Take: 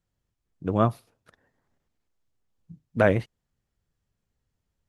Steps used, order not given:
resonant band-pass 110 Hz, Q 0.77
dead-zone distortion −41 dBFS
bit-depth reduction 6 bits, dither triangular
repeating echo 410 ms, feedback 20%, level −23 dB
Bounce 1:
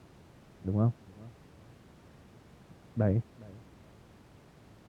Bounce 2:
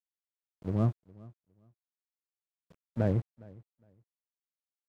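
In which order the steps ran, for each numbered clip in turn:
dead-zone distortion, then repeating echo, then bit-depth reduction, then resonant band-pass
bit-depth reduction, then resonant band-pass, then dead-zone distortion, then repeating echo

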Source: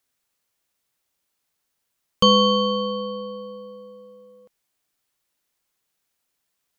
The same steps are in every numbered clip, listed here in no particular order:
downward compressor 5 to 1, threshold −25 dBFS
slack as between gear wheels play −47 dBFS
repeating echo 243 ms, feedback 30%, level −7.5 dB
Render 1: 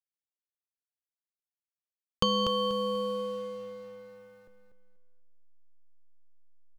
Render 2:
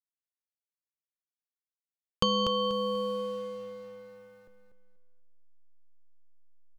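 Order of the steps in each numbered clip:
downward compressor, then slack as between gear wheels, then repeating echo
slack as between gear wheels, then downward compressor, then repeating echo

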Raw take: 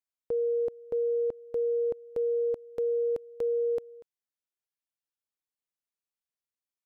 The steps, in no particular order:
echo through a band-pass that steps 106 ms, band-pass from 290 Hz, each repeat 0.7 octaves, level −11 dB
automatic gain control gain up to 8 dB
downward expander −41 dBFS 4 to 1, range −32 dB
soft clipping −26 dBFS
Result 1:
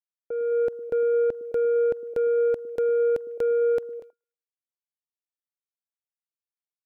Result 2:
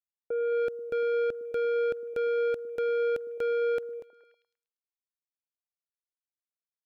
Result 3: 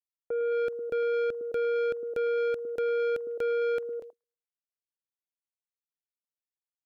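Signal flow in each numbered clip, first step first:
soft clipping, then echo through a band-pass that steps, then automatic gain control, then downward expander
automatic gain control, then soft clipping, then downward expander, then echo through a band-pass that steps
echo through a band-pass that steps, then automatic gain control, then downward expander, then soft clipping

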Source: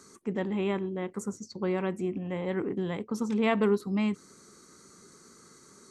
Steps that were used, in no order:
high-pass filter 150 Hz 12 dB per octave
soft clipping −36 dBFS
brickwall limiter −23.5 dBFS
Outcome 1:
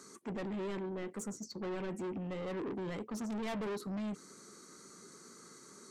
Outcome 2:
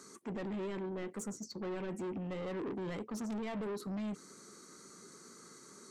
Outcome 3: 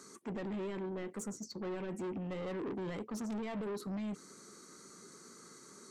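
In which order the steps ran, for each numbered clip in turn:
high-pass filter, then soft clipping, then brickwall limiter
brickwall limiter, then high-pass filter, then soft clipping
high-pass filter, then brickwall limiter, then soft clipping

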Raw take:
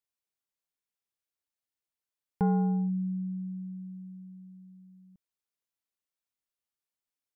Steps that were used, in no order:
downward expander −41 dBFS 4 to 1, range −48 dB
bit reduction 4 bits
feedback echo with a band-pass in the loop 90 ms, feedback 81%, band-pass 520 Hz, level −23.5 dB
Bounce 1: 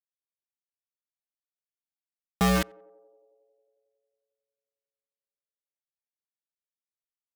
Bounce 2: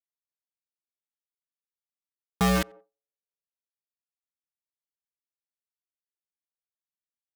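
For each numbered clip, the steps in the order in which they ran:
downward expander, then bit reduction, then feedback echo with a band-pass in the loop
bit reduction, then feedback echo with a band-pass in the loop, then downward expander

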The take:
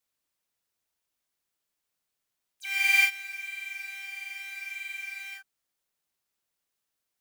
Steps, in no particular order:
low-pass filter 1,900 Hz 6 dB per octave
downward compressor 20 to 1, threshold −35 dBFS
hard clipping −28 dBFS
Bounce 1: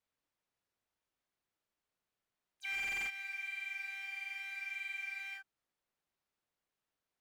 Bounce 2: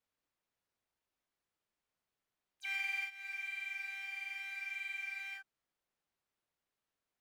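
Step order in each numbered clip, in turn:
hard clipping, then low-pass filter, then downward compressor
low-pass filter, then downward compressor, then hard clipping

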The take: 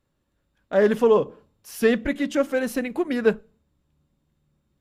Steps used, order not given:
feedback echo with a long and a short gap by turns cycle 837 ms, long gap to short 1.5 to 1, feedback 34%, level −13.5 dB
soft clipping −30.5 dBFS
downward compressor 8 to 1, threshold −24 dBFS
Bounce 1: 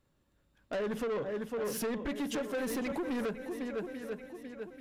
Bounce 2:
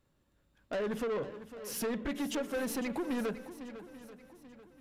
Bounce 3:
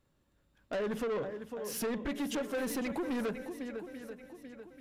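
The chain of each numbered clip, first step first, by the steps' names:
feedback echo with a long and a short gap by turns, then downward compressor, then soft clipping
downward compressor, then soft clipping, then feedback echo with a long and a short gap by turns
downward compressor, then feedback echo with a long and a short gap by turns, then soft clipping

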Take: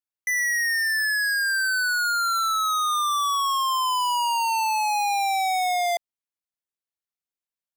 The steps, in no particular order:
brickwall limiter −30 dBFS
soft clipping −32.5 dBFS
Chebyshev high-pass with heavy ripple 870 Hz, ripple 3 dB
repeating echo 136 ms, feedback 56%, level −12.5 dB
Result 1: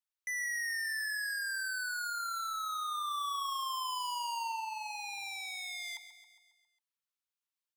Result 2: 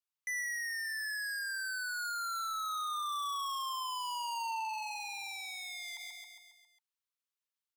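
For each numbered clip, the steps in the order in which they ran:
Chebyshev high-pass with heavy ripple, then brickwall limiter, then soft clipping, then repeating echo
repeating echo, then brickwall limiter, then Chebyshev high-pass with heavy ripple, then soft clipping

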